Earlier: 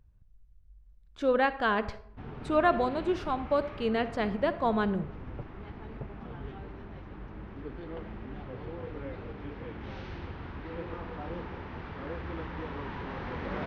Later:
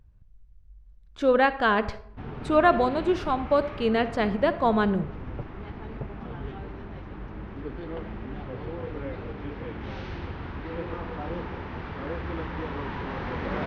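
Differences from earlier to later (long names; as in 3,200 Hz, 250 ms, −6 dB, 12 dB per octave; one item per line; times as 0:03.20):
speech +5.0 dB
background +5.0 dB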